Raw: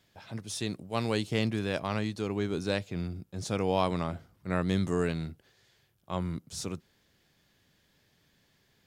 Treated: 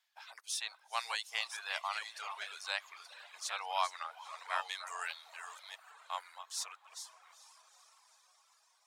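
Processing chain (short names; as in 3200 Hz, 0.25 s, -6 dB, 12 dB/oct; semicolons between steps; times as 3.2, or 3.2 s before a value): reverse delay 0.523 s, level -8 dB; gate -54 dBFS, range -9 dB; steep high-pass 800 Hz 36 dB/oct; diffused feedback echo 0.46 s, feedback 63%, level -13 dB; reverb removal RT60 1.1 s; 5.01–6.22 high shelf 8500 Hz +6 dB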